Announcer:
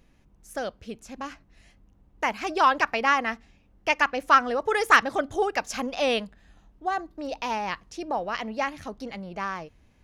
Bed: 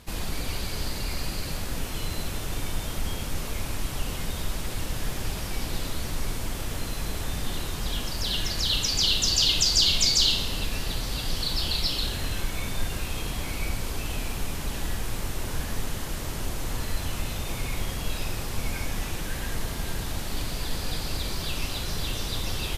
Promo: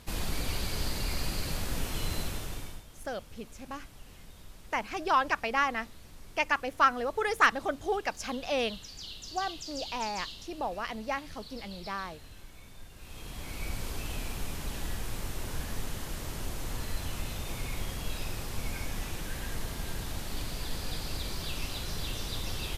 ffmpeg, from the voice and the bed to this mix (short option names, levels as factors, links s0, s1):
-filter_complex "[0:a]adelay=2500,volume=0.531[s0];[1:a]volume=4.47,afade=t=out:st=2.16:d=0.68:silence=0.11885,afade=t=in:st=12.95:d=0.86:silence=0.177828[s1];[s0][s1]amix=inputs=2:normalize=0"